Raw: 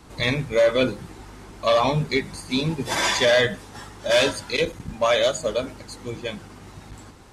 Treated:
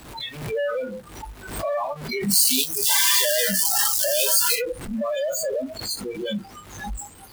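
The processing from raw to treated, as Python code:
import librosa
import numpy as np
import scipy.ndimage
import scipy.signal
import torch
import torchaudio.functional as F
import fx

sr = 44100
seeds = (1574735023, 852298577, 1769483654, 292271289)

y = np.sign(x) * np.sqrt(np.mean(np.square(x)))
y = fx.high_shelf(y, sr, hz=fx.line((2.31, 2700.0), (4.54, 4600.0)), db=10.0, at=(2.31, 4.54), fade=0.02)
y = fx.noise_reduce_blind(y, sr, reduce_db=27)
y = fx.peak_eq(y, sr, hz=6000.0, db=-3.5, octaves=0.85)
y = fx.pre_swell(y, sr, db_per_s=68.0)
y = y * librosa.db_to_amplitude(1.5)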